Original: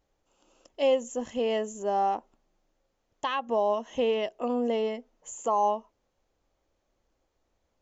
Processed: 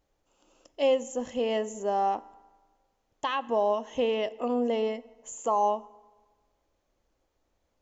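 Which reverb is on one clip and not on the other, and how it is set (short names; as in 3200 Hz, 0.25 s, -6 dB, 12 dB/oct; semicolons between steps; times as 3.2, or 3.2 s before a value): FDN reverb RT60 1.4 s, low-frequency decay 0.9×, high-frequency decay 0.65×, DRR 17 dB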